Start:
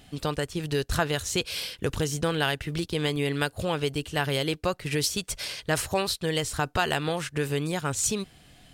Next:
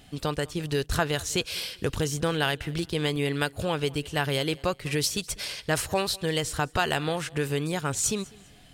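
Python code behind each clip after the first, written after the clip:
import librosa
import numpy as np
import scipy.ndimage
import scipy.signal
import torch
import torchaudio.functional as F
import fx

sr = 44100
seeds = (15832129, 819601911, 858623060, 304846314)

y = fx.echo_feedback(x, sr, ms=200, feedback_pct=31, wet_db=-23.5)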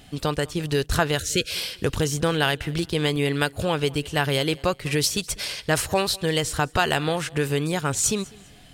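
y = fx.spec_erase(x, sr, start_s=1.19, length_s=0.31, low_hz=640.0, high_hz=1300.0)
y = y * 10.0 ** (4.0 / 20.0)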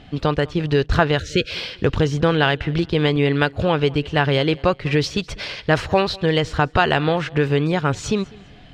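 y = fx.air_absorb(x, sr, metres=220.0)
y = y * 10.0 ** (6.0 / 20.0)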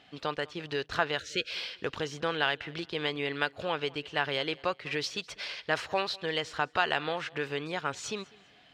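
y = fx.highpass(x, sr, hz=880.0, slope=6)
y = y * 10.0 ** (-7.5 / 20.0)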